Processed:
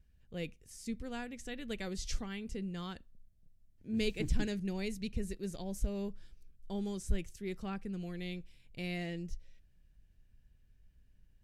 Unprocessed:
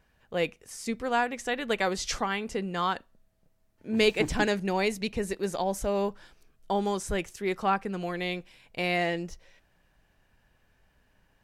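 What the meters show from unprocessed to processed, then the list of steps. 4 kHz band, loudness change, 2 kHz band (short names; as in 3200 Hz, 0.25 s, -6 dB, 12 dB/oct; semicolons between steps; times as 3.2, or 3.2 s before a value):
-11.5 dB, -10.5 dB, -15.0 dB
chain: passive tone stack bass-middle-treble 10-0-1; gain +11 dB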